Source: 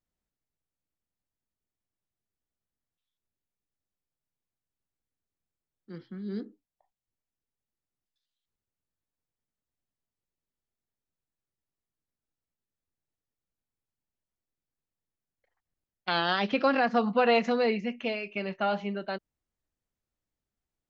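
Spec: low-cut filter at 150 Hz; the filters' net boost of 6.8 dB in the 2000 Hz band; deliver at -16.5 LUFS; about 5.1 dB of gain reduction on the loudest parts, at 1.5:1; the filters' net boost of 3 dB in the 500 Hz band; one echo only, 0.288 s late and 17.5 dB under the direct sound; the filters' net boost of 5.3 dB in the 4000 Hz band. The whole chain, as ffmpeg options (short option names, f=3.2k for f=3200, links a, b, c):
-af "highpass=150,equalizer=f=500:t=o:g=3,equalizer=f=2k:t=o:g=8,equalizer=f=4k:t=o:g=3.5,acompressor=threshold=-30dB:ratio=1.5,aecho=1:1:288:0.133,volume=12.5dB"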